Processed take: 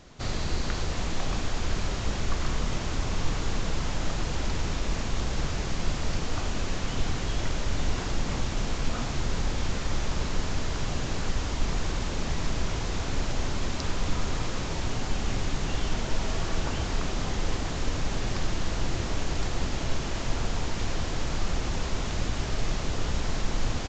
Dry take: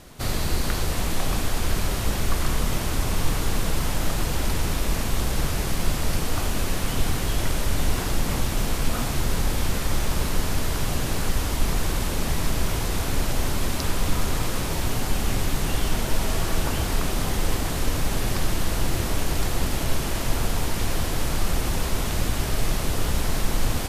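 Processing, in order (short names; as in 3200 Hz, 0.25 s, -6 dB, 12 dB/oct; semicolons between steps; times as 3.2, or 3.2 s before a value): downsampling 16000 Hz; gain -4.5 dB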